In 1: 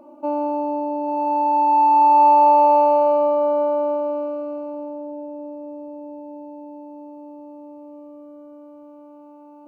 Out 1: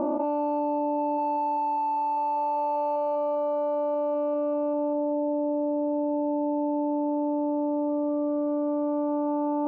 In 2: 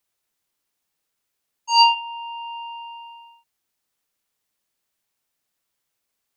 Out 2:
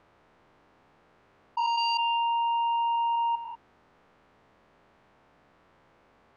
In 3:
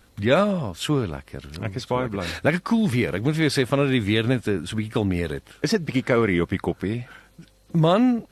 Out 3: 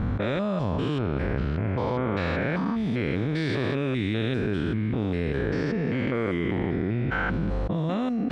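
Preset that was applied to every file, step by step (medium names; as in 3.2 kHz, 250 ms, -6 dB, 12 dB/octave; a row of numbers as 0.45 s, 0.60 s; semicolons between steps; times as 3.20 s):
spectrogram pixelated in time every 200 ms; level-controlled noise filter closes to 1.2 kHz, open at -14 dBFS; level flattener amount 100%; normalise loudness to -27 LUFS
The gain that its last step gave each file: -14.5 dB, -11.0 dB, -6.5 dB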